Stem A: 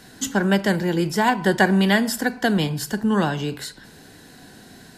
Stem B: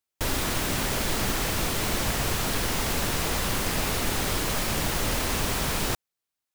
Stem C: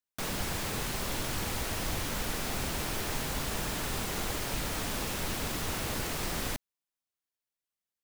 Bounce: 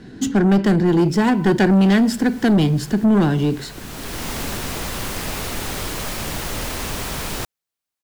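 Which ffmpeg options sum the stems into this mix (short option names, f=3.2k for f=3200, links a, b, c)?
-filter_complex "[0:a]lowshelf=f=490:t=q:w=1.5:g=8,adynamicsmooth=sensitivity=7.5:basefreq=3.7k,volume=1dB,asplit=2[a][b];[1:a]adelay=1500,volume=0.5dB[c];[2:a]adelay=700,volume=-19.5dB[d];[b]apad=whole_len=354878[e];[c][e]sidechaincompress=threshold=-29dB:ratio=8:attack=8.2:release=633[f];[a][f][d]amix=inputs=3:normalize=0,asoftclip=type=tanh:threshold=-10.5dB"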